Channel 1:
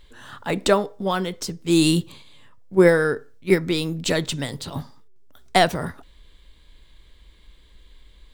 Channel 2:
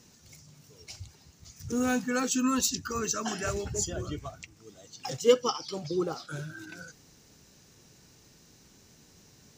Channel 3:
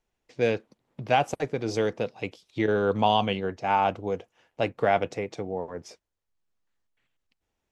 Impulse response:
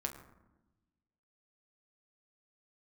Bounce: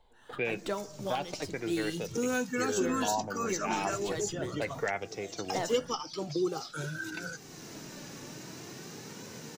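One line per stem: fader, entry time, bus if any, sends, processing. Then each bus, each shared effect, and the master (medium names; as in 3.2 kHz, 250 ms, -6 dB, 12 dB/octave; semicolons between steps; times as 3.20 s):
-16.0 dB, 0.00 s, send -8.5 dB, gate -38 dBFS, range -20 dB; slew-rate limiter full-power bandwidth 310 Hz
+2.0 dB, 0.45 s, no send, high-pass 110 Hz 24 dB/octave
-9.0 dB, 0.00 s, send -16.5 dB, de-esser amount 90%; step-sequenced low-pass 2.6 Hz 870–5700 Hz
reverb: on, RT60 1.0 s, pre-delay 7 ms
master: flange 0.43 Hz, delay 1.9 ms, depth 1.7 ms, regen +59%; three bands compressed up and down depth 70%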